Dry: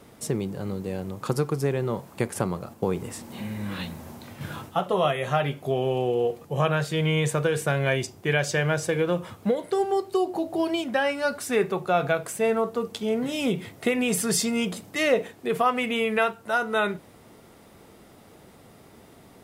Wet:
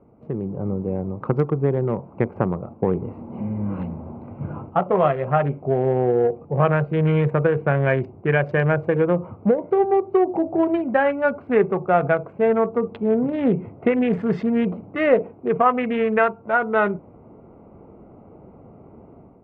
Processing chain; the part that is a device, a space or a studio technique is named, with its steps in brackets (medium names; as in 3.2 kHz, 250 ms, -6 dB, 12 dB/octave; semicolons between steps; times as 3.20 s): local Wiener filter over 25 samples; action camera in a waterproof case (low-pass 2.1 kHz 24 dB/octave; level rider gain up to 9 dB; trim -2 dB; AAC 128 kbps 44.1 kHz)